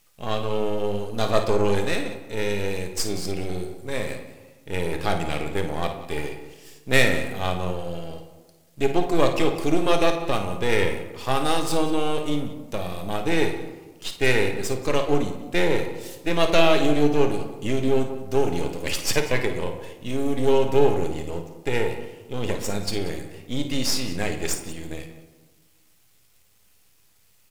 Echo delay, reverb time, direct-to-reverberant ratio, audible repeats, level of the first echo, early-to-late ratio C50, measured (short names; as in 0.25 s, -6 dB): 54 ms, 1.3 s, 4.0 dB, 2, -10.5 dB, 6.5 dB